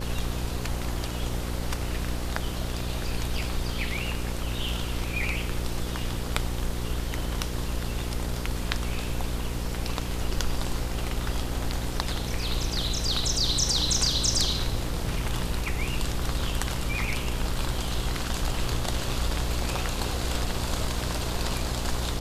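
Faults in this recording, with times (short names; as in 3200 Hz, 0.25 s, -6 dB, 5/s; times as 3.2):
buzz 60 Hz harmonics 9 -32 dBFS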